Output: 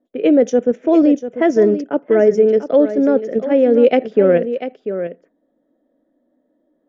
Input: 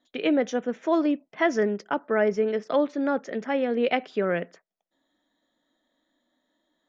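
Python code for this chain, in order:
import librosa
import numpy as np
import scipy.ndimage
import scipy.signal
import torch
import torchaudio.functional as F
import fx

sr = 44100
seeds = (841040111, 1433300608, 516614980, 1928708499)

p1 = fx.graphic_eq(x, sr, hz=(250, 500, 1000, 2000, 4000), db=(5, 10, -9, -4, -12))
p2 = fx.env_lowpass(p1, sr, base_hz=1200.0, full_db=-11.5)
p3 = fx.level_steps(p2, sr, step_db=21)
p4 = p2 + (p3 * 10.0 ** (0.5 / 20.0))
p5 = fx.high_shelf(p4, sr, hz=3000.0, db=11.5)
p6 = p5 + fx.echo_single(p5, sr, ms=693, db=-11.5, dry=0)
y = fx.rider(p6, sr, range_db=4, speed_s=2.0)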